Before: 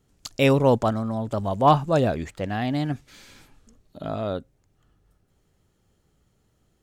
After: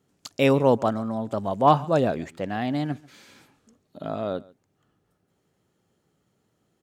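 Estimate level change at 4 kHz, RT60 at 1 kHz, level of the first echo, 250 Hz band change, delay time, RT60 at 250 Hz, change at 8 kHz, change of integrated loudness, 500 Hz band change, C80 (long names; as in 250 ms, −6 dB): −2.5 dB, no reverb audible, −23.0 dB, −0.5 dB, 139 ms, no reverb audible, can't be measured, −0.5 dB, 0.0 dB, no reverb audible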